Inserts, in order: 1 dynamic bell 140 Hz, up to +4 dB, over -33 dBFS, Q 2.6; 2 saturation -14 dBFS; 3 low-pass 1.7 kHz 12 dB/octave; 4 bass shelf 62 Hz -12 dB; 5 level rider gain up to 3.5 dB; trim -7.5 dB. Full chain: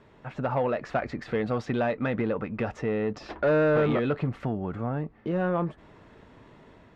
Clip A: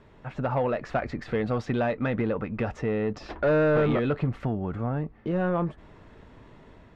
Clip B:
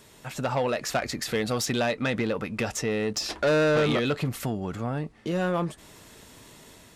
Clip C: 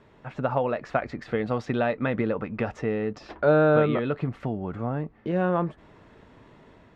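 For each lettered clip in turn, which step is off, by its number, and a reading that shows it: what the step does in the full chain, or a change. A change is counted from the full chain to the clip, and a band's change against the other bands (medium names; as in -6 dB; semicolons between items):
4, 125 Hz band +2.0 dB; 3, 4 kHz band +14.5 dB; 2, distortion -9 dB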